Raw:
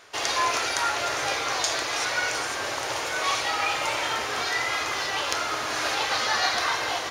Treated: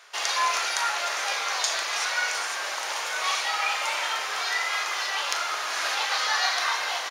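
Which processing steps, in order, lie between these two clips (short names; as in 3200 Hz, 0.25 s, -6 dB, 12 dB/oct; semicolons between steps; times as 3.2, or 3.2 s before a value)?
HPF 770 Hz 12 dB/oct; doubler 39 ms -12 dB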